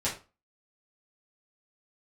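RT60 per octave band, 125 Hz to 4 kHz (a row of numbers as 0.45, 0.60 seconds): 0.35, 0.35, 0.30, 0.30, 0.25, 0.25 seconds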